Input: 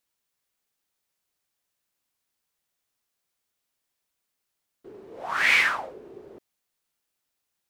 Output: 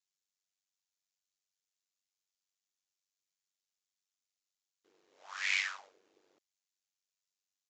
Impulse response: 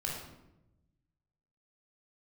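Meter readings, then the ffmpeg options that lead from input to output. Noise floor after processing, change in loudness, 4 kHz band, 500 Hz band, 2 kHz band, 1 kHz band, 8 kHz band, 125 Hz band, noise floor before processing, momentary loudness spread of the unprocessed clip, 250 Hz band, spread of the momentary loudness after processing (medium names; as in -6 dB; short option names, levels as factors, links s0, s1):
under -85 dBFS, -11.5 dB, -9.0 dB, -25.5 dB, -13.5 dB, -18.5 dB, -6.0 dB, no reading, -81 dBFS, 21 LU, under -25 dB, 17 LU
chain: -af "aderivative,aresample=16000,aresample=44100,aeval=exprs='val(0)*sin(2*PI*48*n/s)':c=same"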